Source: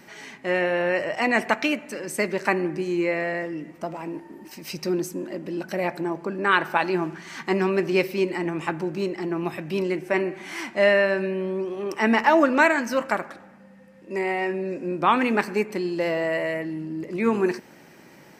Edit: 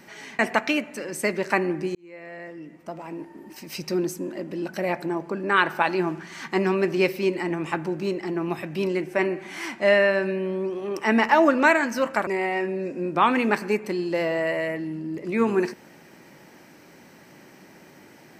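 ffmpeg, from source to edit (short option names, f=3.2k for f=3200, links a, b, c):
-filter_complex "[0:a]asplit=4[a][b][c][d];[a]atrim=end=0.392[e];[b]atrim=start=1.338:end=2.9,asetpts=PTS-STARTPTS,afade=t=out:st=1.558:d=0.004:c=hsin[f];[c]atrim=start=2.9:end=13.222,asetpts=PTS-STARTPTS,afade=t=in:d=1.59[g];[d]atrim=start=14.128[h];[f][g]concat=n=2:v=0:a=1[i];[e][i]acrossfade=d=0.004:c1=hsin:c2=hsin[j];[j][h]acrossfade=d=0.004:c1=hsin:c2=hsin"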